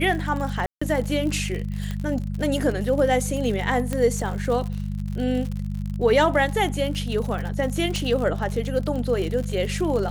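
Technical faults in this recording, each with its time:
surface crackle 77 per second −29 dBFS
mains hum 50 Hz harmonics 4 −28 dBFS
0:00.66–0:00.81: drop-out 155 ms
0:01.91: click −17 dBFS
0:03.93: click −13 dBFS
0:07.96: click −13 dBFS

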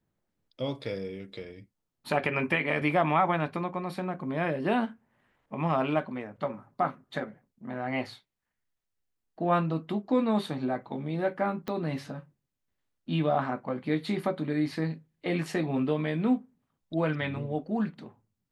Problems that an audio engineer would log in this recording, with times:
0:11.68: click −20 dBFS

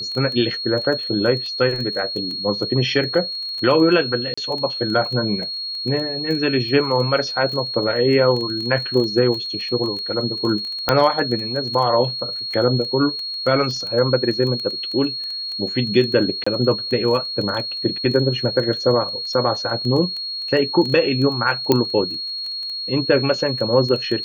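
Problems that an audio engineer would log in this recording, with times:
surface crackle 12 per second −25 dBFS
whistle 4,300 Hz −25 dBFS
0:04.34–0:04.38: drop-out 35 ms
0:10.89: click −1 dBFS
0:16.44–0:16.46: drop-out 25 ms
0:21.72: click −2 dBFS

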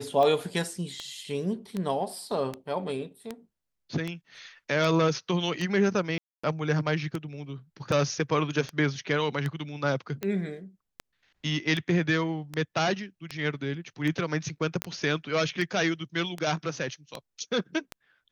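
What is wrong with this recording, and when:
scratch tick 78 rpm −18 dBFS
0:06.18–0:06.43: drop-out 255 ms
0:14.82: click −11 dBFS

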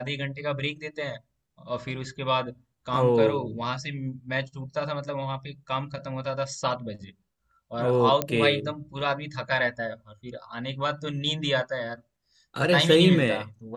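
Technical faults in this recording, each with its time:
0:08.22: click −9 dBFS

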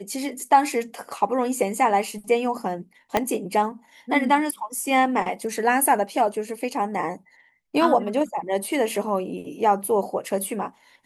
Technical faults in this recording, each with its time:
0:03.17: click −6 dBFS

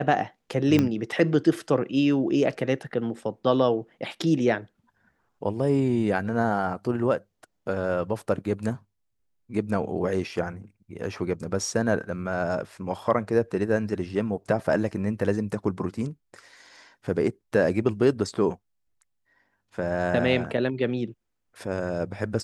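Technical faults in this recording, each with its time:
0:00.79: click −9 dBFS

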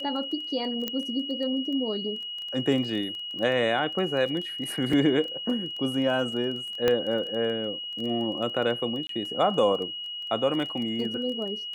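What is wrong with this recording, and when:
surface crackle 17 per second −33 dBFS
whistle 2,900 Hz −33 dBFS
0:00.88: click −14 dBFS
0:04.93: drop-out 3.5 ms
0:06.88: click −10 dBFS
0:09.07–0:09.09: drop-out 23 ms

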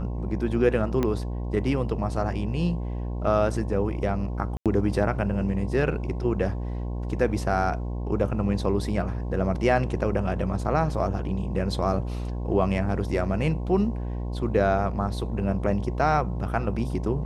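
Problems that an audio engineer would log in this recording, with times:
mains buzz 60 Hz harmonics 18 −30 dBFS
0:01.03: click −13 dBFS
0:04.57–0:04.66: drop-out 87 ms

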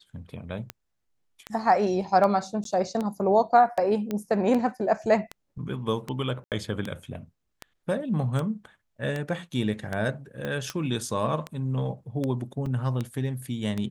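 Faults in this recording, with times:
scratch tick 78 rpm −17 dBFS
0:02.64–0:02.65: drop-out 13 ms
0:04.11: click −17 dBFS
0:06.44–0:06.52: drop-out 78 ms
0:10.45: click −19 dBFS
0:12.66: drop-out 3.4 ms

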